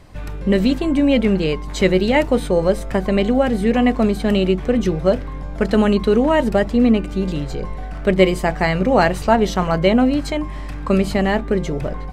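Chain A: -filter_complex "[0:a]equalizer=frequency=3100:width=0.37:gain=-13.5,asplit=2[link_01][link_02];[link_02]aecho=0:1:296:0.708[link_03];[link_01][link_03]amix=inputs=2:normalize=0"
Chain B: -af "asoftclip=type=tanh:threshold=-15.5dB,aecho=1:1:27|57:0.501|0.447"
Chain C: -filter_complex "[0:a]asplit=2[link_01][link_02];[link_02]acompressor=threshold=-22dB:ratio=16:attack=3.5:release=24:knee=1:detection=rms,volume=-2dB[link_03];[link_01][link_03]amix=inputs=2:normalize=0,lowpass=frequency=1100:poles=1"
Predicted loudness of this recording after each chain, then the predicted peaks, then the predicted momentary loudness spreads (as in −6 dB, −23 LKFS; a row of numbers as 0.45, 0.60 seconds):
−18.0, −20.5, −16.5 LKFS; −2.5, −10.0, −1.0 dBFS; 6, 6, 8 LU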